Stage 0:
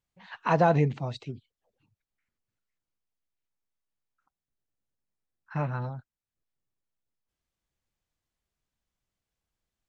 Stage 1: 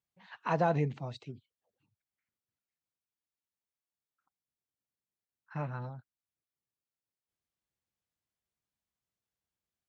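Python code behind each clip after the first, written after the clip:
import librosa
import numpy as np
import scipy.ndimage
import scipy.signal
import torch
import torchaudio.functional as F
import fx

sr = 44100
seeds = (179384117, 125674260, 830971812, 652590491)

y = scipy.signal.sosfilt(scipy.signal.butter(2, 79.0, 'highpass', fs=sr, output='sos'), x)
y = F.gain(torch.from_numpy(y), -6.5).numpy()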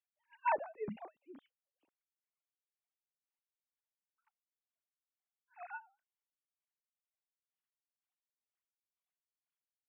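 y = fx.sine_speech(x, sr)
y = y * 10.0 ** (-28 * (0.5 - 0.5 * np.cos(2.0 * np.pi * 2.1 * np.arange(len(y)) / sr)) / 20.0)
y = F.gain(torch.from_numpy(y), 2.0).numpy()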